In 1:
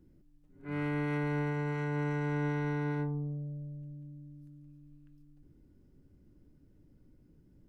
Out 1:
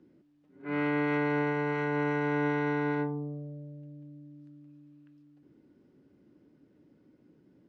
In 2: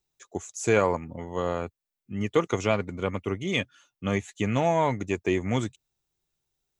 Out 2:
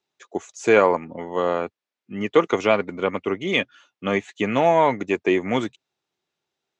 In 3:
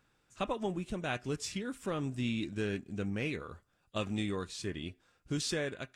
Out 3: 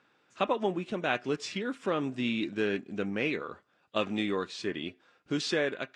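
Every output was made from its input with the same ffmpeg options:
-af "highpass=250,lowpass=4k,volume=7dB"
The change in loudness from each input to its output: +4.0, +6.0, +4.5 LU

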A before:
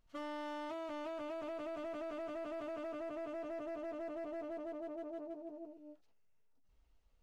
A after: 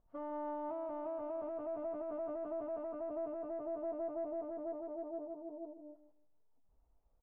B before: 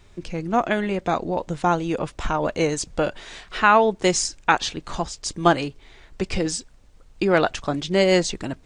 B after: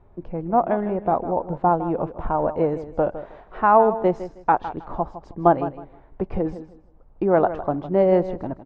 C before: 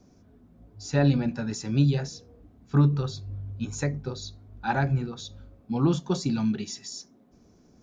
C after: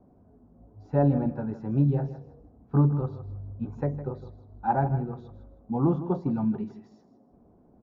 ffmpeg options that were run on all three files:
-af "lowpass=f=840:t=q:w=1.7,aecho=1:1:158|316|474:0.224|0.0493|0.0108,volume=-1.5dB"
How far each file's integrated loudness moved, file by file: +2.0, 0.0, -0.5 LU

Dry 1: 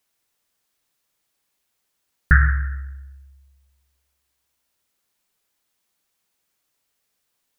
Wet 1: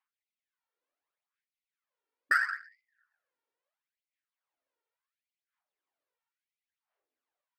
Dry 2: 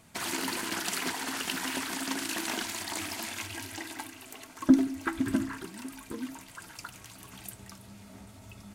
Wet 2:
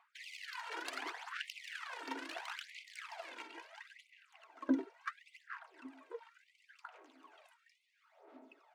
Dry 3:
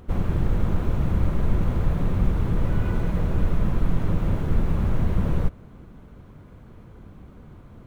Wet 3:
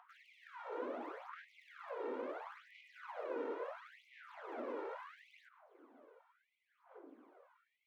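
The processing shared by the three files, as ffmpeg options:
-filter_complex "[0:a]highpass=95,acrossover=split=240|400|740[a][b][c][d];[d]adynamicsmooth=sensitivity=2.5:basefreq=1.8k[e];[a][b][c][e]amix=inputs=4:normalize=0,aphaser=in_gain=1:out_gain=1:delay=2.2:decay=0.62:speed=0.72:type=sinusoidal,afftfilt=real='re*gte(b*sr/1024,220*pow(2000/220,0.5+0.5*sin(2*PI*0.8*pts/sr)))':imag='im*gte(b*sr/1024,220*pow(2000/220,0.5+0.5*sin(2*PI*0.8*pts/sr)))':win_size=1024:overlap=0.75,volume=-7.5dB"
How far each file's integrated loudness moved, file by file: -9.0, -12.5, -20.5 LU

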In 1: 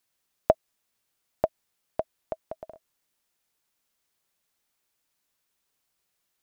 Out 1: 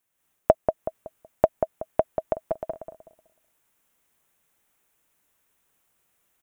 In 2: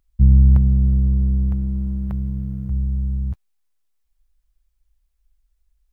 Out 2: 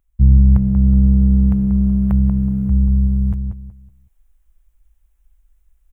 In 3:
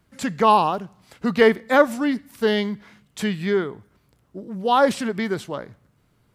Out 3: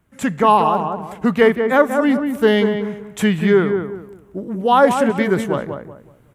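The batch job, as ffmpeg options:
-filter_complex "[0:a]equalizer=f=4.6k:t=o:w=0.67:g=-12,asplit=2[a][b];[b]adelay=187,lowpass=f=1.5k:p=1,volume=-6dB,asplit=2[c][d];[d]adelay=187,lowpass=f=1.5k:p=1,volume=0.3,asplit=2[e][f];[f]adelay=187,lowpass=f=1.5k:p=1,volume=0.3,asplit=2[g][h];[h]adelay=187,lowpass=f=1.5k:p=1,volume=0.3[i];[a][c][e][g][i]amix=inputs=5:normalize=0,dynaudnorm=f=140:g=3:m=8dB"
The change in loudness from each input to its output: +4.0, +4.0, +4.5 LU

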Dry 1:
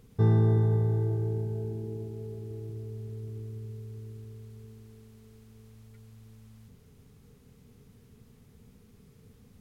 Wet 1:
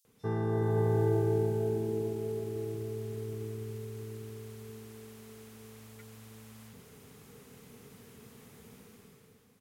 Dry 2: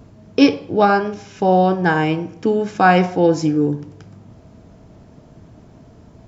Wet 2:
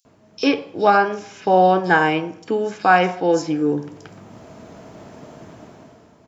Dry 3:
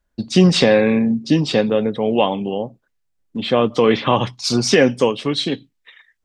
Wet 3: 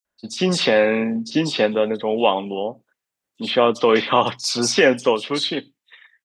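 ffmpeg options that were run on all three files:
-filter_complex "[0:a]highpass=f=510:p=1,dynaudnorm=f=110:g=13:m=12.5dB,acrossover=split=4500[a][b];[a]adelay=50[c];[c][b]amix=inputs=2:normalize=0,volume=-1dB"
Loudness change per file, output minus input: -3.0, -1.5, -2.0 LU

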